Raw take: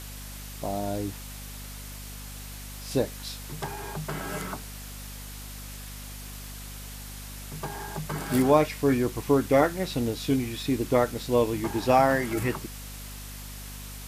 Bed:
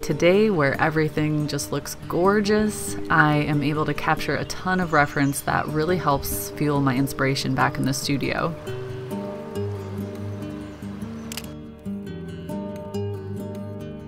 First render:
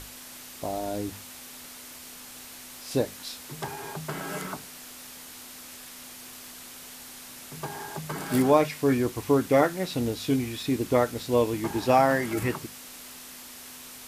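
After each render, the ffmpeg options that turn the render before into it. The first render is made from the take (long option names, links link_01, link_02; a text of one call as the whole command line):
ffmpeg -i in.wav -af "bandreject=frequency=50:width_type=h:width=6,bandreject=frequency=100:width_type=h:width=6,bandreject=frequency=150:width_type=h:width=6,bandreject=frequency=200:width_type=h:width=6" out.wav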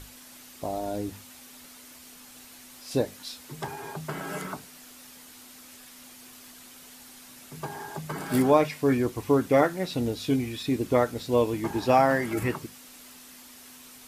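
ffmpeg -i in.wav -af "afftdn=noise_reduction=6:noise_floor=-45" out.wav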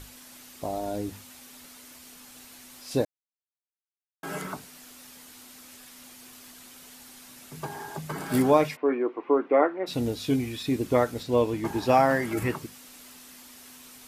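ffmpeg -i in.wav -filter_complex "[0:a]asplit=3[link_01][link_02][link_03];[link_01]afade=type=out:start_time=8.75:duration=0.02[link_04];[link_02]highpass=frequency=310:width=0.5412,highpass=frequency=310:width=1.3066,equalizer=frequency=340:width_type=q:width=4:gain=4,equalizer=frequency=1100:width_type=q:width=4:gain=3,equalizer=frequency=1700:width_type=q:width=4:gain=-5,lowpass=frequency=2200:width=0.5412,lowpass=frequency=2200:width=1.3066,afade=type=in:start_time=8.75:duration=0.02,afade=type=out:start_time=9.86:duration=0.02[link_05];[link_03]afade=type=in:start_time=9.86:duration=0.02[link_06];[link_04][link_05][link_06]amix=inputs=3:normalize=0,asettb=1/sr,asplit=3[link_07][link_08][link_09];[link_07]atrim=end=11.234[link_10];[link_08]atrim=start=11.23:end=11.65,asetpts=PTS-STARTPTS,afade=type=in:duration=0.004:curve=qsin,afade=type=out:start_time=0.416:duration=0.004:curve=qsin,highshelf=frequency=7300:gain=-7.5[link_11];[link_09]atrim=start=11.646[link_12];[link_10][link_11]acrossfade=duration=0.004:curve1=hsin:curve2=qsin[link_13];[link_13][link_12]acrossfade=duration=0.004:curve1=qsin:curve2=hsin,asplit=3[link_14][link_15][link_16];[link_14]atrim=end=3.05,asetpts=PTS-STARTPTS,afade=type=out:start_time=3.046:duration=0.004:curve=hsin[link_17];[link_15]atrim=start=3.05:end=4.23,asetpts=PTS-STARTPTS,volume=0[link_18];[link_16]atrim=start=4.23,asetpts=PTS-STARTPTS,afade=type=in:duration=0.004:curve=hsin[link_19];[link_17][link_18][link_19]concat=n=3:v=0:a=1" out.wav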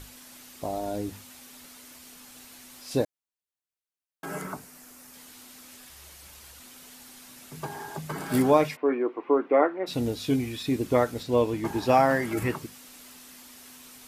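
ffmpeg -i in.wav -filter_complex "[0:a]asettb=1/sr,asplit=3[link_01][link_02][link_03];[link_01]atrim=end=4.254[link_04];[link_02]atrim=start=4.25:end=5.14,asetpts=PTS-STARTPTS,afade=type=in:duration=0.004:curve=qsin,afade=type=out:start_time=0.886:duration=0.004:curve=qsin,equalizer=frequency=3500:width_type=o:width=1:gain=-8[link_05];[link_03]atrim=start=5.136[link_06];[link_04][link_05]acrossfade=duration=0.004:curve1=hsin:curve2=qsin[link_07];[link_07][link_06]acrossfade=duration=0.004:curve1=qsin:curve2=hsin,asettb=1/sr,asplit=3[link_08][link_09][link_10];[link_08]atrim=end=5.894[link_11];[link_09]atrim=start=5.89:end=6.6,asetpts=PTS-STARTPTS,afade=type=in:duration=0.004:curve=qsin,afade=type=out:start_time=0.706:duration=0.004:curve=qsin,afreqshift=-180[link_12];[link_10]atrim=start=6.596[link_13];[link_11][link_12]acrossfade=duration=0.004:curve1=hsin:curve2=qsin[link_14];[link_14][link_13]acrossfade=duration=0.004:curve1=qsin:curve2=hsin" out.wav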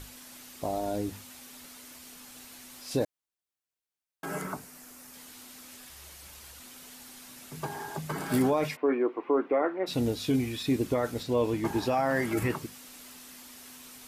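ffmpeg -i in.wav -af "alimiter=limit=-17.5dB:level=0:latency=1:release=13" out.wav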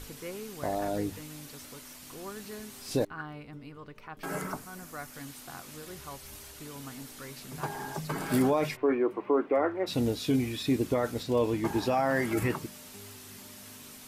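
ffmpeg -i in.wav -i bed.wav -filter_complex "[1:a]volume=-23.5dB[link_01];[0:a][link_01]amix=inputs=2:normalize=0" out.wav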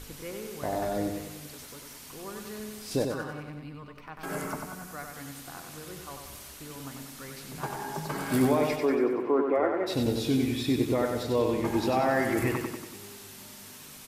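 ffmpeg -i in.wav -af "aecho=1:1:94|188|282|376|470|564|658:0.562|0.309|0.17|0.0936|0.0515|0.0283|0.0156" out.wav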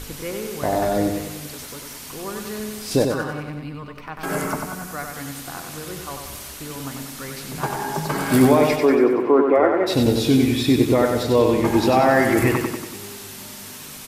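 ffmpeg -i in.wav -af "volume=9.5dB" out.wav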